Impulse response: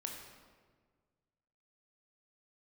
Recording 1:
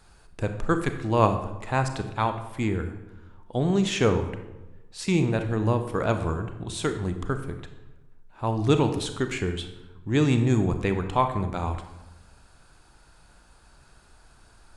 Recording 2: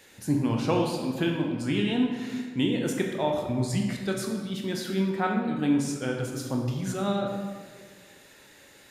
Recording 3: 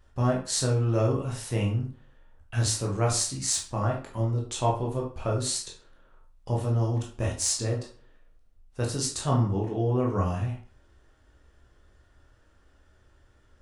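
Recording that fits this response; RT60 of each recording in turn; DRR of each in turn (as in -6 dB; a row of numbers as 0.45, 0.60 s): 2; 1.1, 1.6, 0.45 s; 7.5, 0.5, -2.0 dB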